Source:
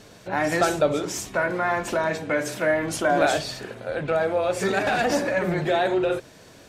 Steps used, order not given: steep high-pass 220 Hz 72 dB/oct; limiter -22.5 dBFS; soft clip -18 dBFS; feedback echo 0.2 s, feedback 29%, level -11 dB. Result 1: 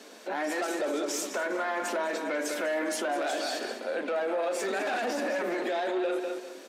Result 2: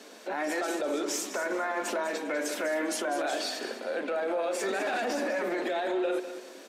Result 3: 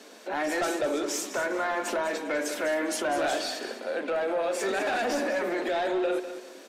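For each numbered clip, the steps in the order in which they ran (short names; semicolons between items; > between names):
feedback echo > soft clip > steep high-pass > limiter; steep high-pass > limiter > soft clip > feedback echo; steep high-pass > soft clip > limiter > feedback echo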